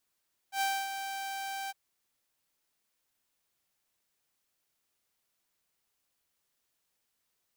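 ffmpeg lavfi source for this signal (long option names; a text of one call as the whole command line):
ffmpeg -f lavfi -i "aevalsrc='0.0596*(2*mod(782*t,1)-1)':duration=1.208:sample_rate=44100,afade=type=in:duration=0.09,afade=type=out:start_time=0.09:duration=0.265:silence=0.376,afade=type=out:start_time=1.18:duration=0.028" out.wav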